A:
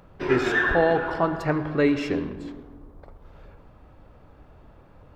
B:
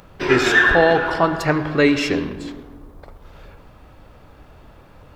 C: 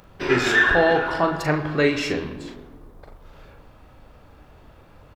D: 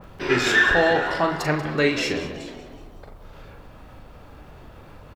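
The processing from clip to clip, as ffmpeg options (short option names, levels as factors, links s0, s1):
-af "highshelf=f=2100:g=10.5,volume=1.68"
-filter_complex "[0:a]asplit=2[s0][s1];[s1]adelay=40,volume=0.447[s2];[s0][s2]amix=inputs=2:normalize=0,volume=0.631"
-filter_complex "[0:a]acompressor=mode=upward:threshold=0.02:ratio=2.5,asplit=6[s0][s1][s2][s3][s4][s5];[s1]adelay=187,afreqshift=77,volume=0.188[s6];[s2]adelay=374,afreqshift=154,volume=0.0966[s7];[s3]adelay=561,afreqshift=231,volume=0.049[s8];[s4]adelay=748,afreqshift=308,volume=0.0251[s9];[s5]adelay=935,afreqshift=385,volume=0.0127[s10];[s0][s6][s7][s8][s9][s10]amix=inputs=6:normalize=0,adynamicequalizer=threshold=0.0282:dfrequency=2100:dqfactor=0.7:tfrequency=2100:tqfactor=0.7:attack=5:release=100:ratio=0.375:range=2:mode=boostabove:tftype=highshelf,volume=0.841"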